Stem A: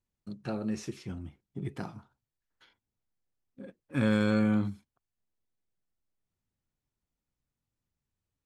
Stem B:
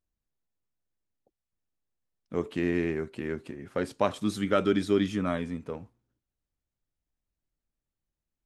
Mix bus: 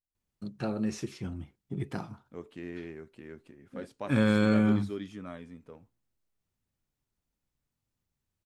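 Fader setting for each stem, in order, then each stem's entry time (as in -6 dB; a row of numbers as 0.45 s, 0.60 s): +2.0 dB, -13.0 dB; 0.15 s, 0.00 s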